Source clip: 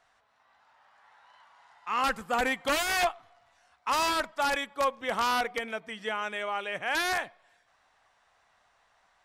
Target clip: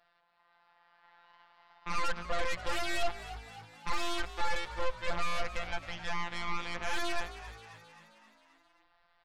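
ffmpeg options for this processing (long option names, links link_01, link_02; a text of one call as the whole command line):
ffmpeg -i in.wav -filter_complex "[0:a]afftfilt=real='hypot(re,im)*cos(PI*b)':imag='0':win_size=1024:overlap=0.75,aresample=11025,asoftclip=type=tanh:threshold=-22dB,aresample=44100,aeval=exprs='0.0841*(cos(1*acos(clip(val(0)/0.0841,-1,1)))-cos(1*PI/2))+0.0211*(cos(6*acos(clip(val(0)/0.0841,-1,1)))-cos(6*PI/2))':channel_layout=same,asplit=7[link_01][link_02][link_03][link_04][link_05][link_06][link_07];[link_02]adelay=265,afreqshift=54,volume=-16dB[link_08];[link_03]adelay=530,afreqshift=108,volume=-20.6dB[link_09];[link_04]adelay=795,afreqshift=162,volume=-25.2dB[link_10];[link_05]adelay=1060,afreqshift=216,volume=-29.7dB[link_11];[link_06]adelay=1325,afreqshift=270,volume=-34.3dB[link_12];[link_07]adelay=1590,afreqshift=324,volume=-38.9dB[link_13];[link_01][link_08][link_09][link_10][link_11][link_12][link_13]amix=inputs=7:normalize=0,asubboost=boost=3.5:cutoff=66,asplit=2[link_14][link_15];[link_15]alimiter=level_in=1.5dB:limit=-24dB:level=0:latency=1,volume=-1.5dB,volume=-0.5dB[link_16];[link_14][link_16]amix=inputs=2:normalize=0,volume=-6dB" out.wav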